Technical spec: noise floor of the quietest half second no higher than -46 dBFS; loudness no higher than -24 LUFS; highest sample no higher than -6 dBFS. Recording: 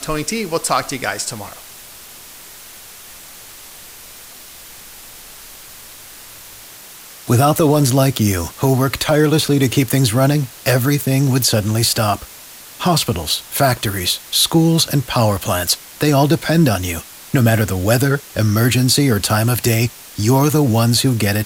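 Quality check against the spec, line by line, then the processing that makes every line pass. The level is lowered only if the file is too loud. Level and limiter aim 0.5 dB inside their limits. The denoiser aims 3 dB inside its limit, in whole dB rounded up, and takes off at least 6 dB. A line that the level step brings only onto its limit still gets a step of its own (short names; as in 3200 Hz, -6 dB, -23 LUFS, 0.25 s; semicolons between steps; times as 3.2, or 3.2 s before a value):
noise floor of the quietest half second -38 dBFS: fail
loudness -16.0 LUFS: fail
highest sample -3.5 dBFS: fail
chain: gain -8.5 dB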